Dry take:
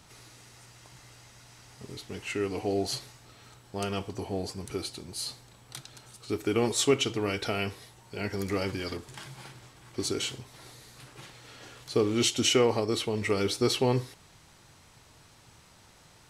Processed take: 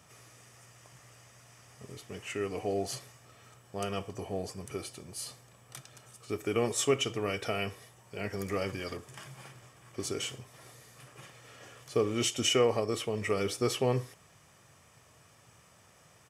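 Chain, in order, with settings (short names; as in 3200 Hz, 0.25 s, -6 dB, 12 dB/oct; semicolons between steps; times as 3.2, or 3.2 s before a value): HPF 100 Hz; bell 4100 Hz -11.5 dB 0.35 oct; comb 1.7 ms, depth 36%; gain -2.5 dB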